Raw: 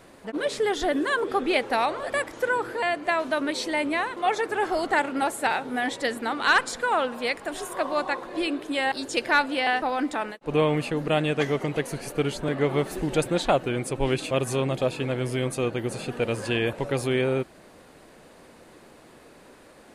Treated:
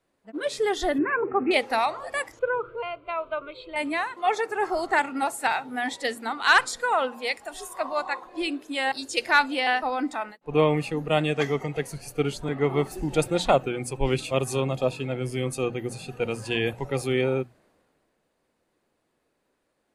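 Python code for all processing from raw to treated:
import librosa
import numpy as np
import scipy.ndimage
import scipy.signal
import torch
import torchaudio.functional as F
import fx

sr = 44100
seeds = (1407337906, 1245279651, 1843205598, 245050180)

y = fx.chain(x, sr, fx.highpass(hz=100.0, slope=12),
    fx.bass_treble(bass_db=8, treble_db=-9),
    fx.resample_bad(factor=8, down='none', up='filtered'), at=(0.98, 1.51))
y = fx.chain(y, sr, fx.lowpass(hz=3100.0, slope=12),
    fx.low_shelf(hz=180.0, db=8.5),
    fx.fixed_phaser(hz=1200.0, stages=8), at=(2.39, 3.76))
y = fx.hum_notches(y, sr, base_hz=60, count=4)
y = fx.noise_reduce_blind(y, sr, reduce_db=9)
y = fx.band_widen(y, sr, depth_pct=40)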